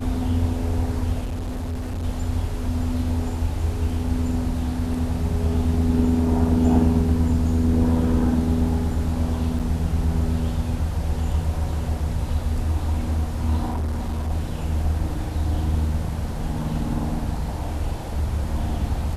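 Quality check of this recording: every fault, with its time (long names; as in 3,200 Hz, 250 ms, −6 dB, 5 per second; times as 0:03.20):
0:01.24–0:02.05: clipping −24.5 dBFS
0:09.59–0:09.60: drop-out 7.1 ms
0:13.69–0:14.32: clipping −21.5 dBFS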